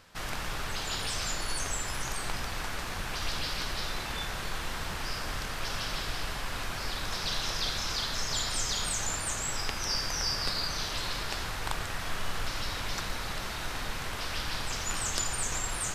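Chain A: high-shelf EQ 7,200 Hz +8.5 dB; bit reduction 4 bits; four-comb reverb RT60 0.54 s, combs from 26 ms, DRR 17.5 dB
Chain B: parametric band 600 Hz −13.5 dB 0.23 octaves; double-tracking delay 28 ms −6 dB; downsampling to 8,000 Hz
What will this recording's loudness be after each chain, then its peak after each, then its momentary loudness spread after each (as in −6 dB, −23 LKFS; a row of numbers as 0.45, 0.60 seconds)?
−32.0, −35.5 LKFS; −7.5, −15.5 dBFS; 18, 2 LU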